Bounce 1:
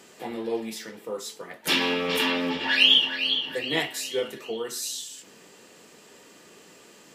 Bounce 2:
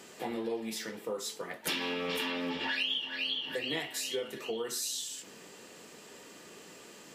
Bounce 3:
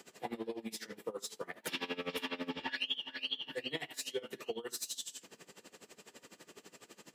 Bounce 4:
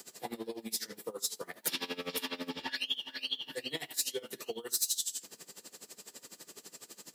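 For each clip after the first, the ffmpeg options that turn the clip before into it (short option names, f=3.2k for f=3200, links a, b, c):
-af "acompressor=threshold=-32dB:ratio=5"
-filter_complex "[0:a]acrossover=split=110|1600|3900[a][b][c][d];[d]volume=33.5dB,asoftclip=hard,volume=-33.5dB[e];[a][b][c][e]amix=inputs=4:normalize=0,aeval=exprs='val(0)*pow(10,-21*(0.5-0.5*cos(2*PI*12*n/s))/20)':c=same"
-af "aexciter=amount=2.2:drive=7.7:freq=3.9k"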